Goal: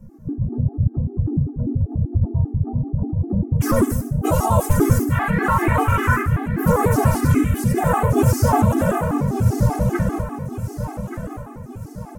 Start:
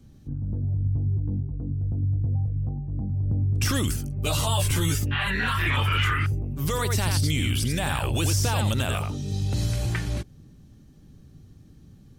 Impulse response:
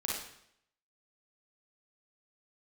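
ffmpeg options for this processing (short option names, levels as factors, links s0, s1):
-filter_complex "[0:a]equalizer=f=6400:w=1.8:g=8,acrossover=split=140|5500[s0][s1][s2];[s0]acontrast=41[s3];[s3][s1][s2]amix=inputs=3:normalize=0,firequalizer=gain_entry='entry(140,0);entry(230,10);entry(460,8);entry(920,9);entry(3300,-21);entry(12000,0)':delay=0.05:min_phase=1,asplit=2[s4][s5];[1:a]atrim=start_sample=2205,highshelf=f=8500:g=8[s6];[s5][s6]afir=irnorm=-1:irlink=0,volume=0.266[s7];[s4][s7]amix=inputs=2:normalize=0,asplit=4[s8][s9][s10][s11];[s9]asetrate=37084,aresample=44100,atempo=1.18921,volume=0.562[s12];[s10]asetrate=52444,aresample=44100,atempo=0.840896,volume=0.398[s13];[s11]asetrate=55563,aresample=44100,atempo=0.793701,volume=0.141[s14];[s8][s12][s13][s14]amix=inputs=4:normalize=0,bandreject=f=50:t=h:w=6,bandreject=f=100:t=h:w=6,aecho=1:1:1178|2356|3534|4712|5890:0.316|0.145|0.0669|0.0308|0.0142,flanger=delay=5.4:depth=2.7:regen=45:speed=0.9:shape=triangular,afftfilt=real='re*gt(sin(2*PI*5.1*pts/sr)*(1-2*mod(floor(b*sr/1024/220),2)),0)':imag='im*gt(sin(2*PI*5.1*pts/sr)*(1-2*mod(floor(b*sr/1024/220),2)),0)':win_size=1024:overlap=0.75,volume=2.11"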